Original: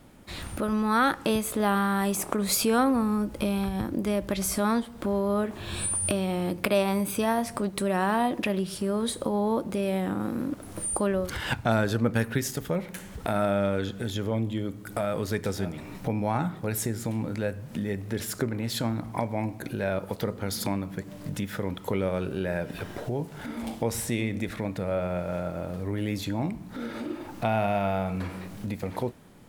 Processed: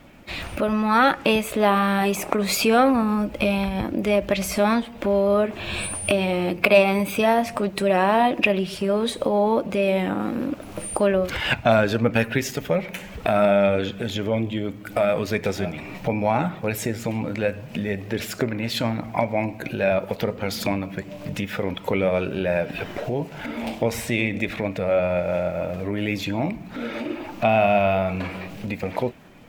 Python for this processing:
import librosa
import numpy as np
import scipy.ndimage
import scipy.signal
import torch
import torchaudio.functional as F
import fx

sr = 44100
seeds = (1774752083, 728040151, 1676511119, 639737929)

y = fx.spec_quant(x, sr, step_db=15)
y = fx.graphic_eq_15(y, sr, hz=(100, 630, 2500, 10000), db=(-3, 6, 10, -8))
y = y * 10.0 ** (4.0 / 20.0)